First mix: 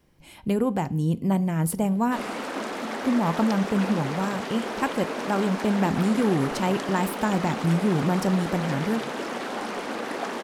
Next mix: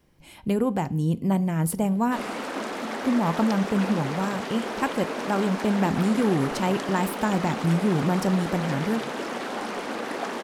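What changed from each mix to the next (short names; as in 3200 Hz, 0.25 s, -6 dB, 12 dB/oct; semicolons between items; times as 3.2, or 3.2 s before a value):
none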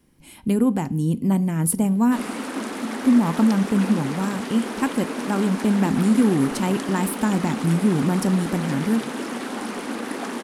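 master: add fifteen-band EQ 250 Hz +8 dB, 630 Hz -4 dB, 10000 Hz +10 dB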